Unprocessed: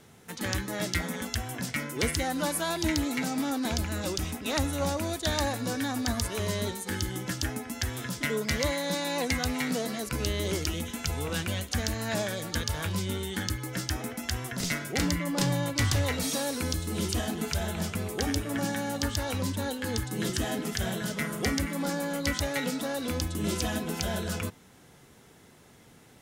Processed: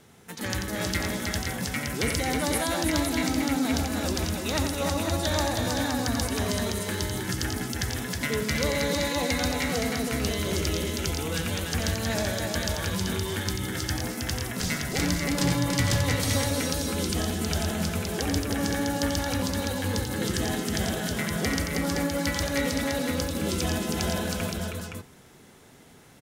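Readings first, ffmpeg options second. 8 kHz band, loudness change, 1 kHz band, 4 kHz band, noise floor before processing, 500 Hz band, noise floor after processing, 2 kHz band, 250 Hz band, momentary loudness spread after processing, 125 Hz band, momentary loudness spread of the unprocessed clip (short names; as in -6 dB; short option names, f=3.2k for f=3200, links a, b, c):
+3.0 dB, +3.0 dB, +3.0 dB, +3.0 dB, -55 dBFS, +3.0 dB, -52 dBFS, +3.0 dB, +3.0 dB, 5 LU, +3.0 dB, 5 LU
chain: -af "aecho=1:1:89|167|318|518:0.473|0.2|0.631|0.562"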